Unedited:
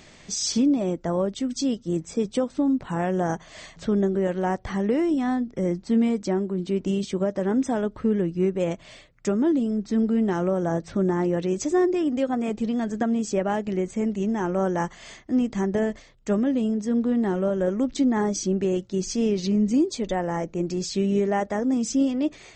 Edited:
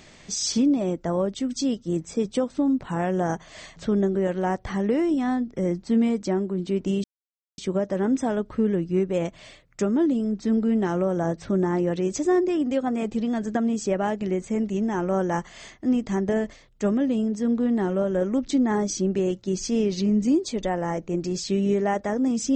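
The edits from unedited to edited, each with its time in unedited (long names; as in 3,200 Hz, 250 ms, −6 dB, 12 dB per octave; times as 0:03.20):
0:07.04: splice in silence 0.54 s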